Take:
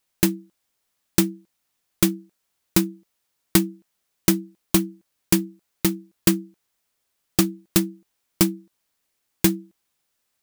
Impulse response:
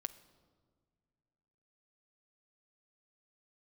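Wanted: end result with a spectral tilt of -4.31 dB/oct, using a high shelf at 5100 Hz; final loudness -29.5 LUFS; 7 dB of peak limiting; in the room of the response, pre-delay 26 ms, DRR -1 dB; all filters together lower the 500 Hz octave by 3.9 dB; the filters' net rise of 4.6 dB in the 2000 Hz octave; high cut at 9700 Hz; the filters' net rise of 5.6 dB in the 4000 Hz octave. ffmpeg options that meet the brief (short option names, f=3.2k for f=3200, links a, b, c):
-filter_complex "[0:a]lowpass=9.7k,equalizer=f=500:t=o:g=-8.5,equalizer=f=2k:t=o:g=4.5,equalizer=f=4k:t=o:g=8.5,highshelf=f=5.1k:g=-5.5,alimiter=limit=-9dB:level=0:latency=1,asplit=2[a][b];[1:a]atrim=start_sample=2205,adelay=26[c];[b][c]afir=irnorm=-1:irlink=0,volume=3dB[d];[a][d]amix=inputs=2:normalize=0,volume=-4.5dB"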